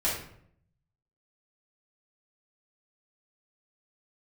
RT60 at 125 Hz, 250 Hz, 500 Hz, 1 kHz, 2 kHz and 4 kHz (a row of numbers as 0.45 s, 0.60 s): 1.1 s, 0.80 s, 0.70 s, 0.60 s, 0.55 s, 0.45 s